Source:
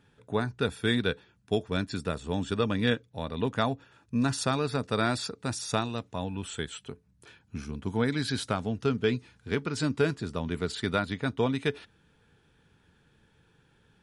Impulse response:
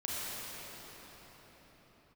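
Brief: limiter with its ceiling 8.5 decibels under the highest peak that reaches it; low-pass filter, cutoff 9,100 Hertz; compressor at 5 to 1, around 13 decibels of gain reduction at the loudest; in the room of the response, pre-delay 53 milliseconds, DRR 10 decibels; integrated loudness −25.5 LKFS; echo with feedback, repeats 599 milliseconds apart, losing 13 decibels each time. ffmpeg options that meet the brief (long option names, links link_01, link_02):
-filter_complex "[0:a]lowpass=9100,acompressor=threshold=-36dB:ratio=5,alimiter=level_in=4dB:limit=-24dB:level=0:latency=1,volume=-4dB,aecho=1:1:599|1198|1797:0.224|0.0493|0.0108,asplit=2[link_01][link_02];[1:a]atrim=start_sample=2205,adelay=53[link_03];[link_02][link_03]afir=irnorm=-1:irlink=0,volume=-15.5dB[link_04];[link_01][link_04]amix=inputs=2:normalize=0,volume=16dB"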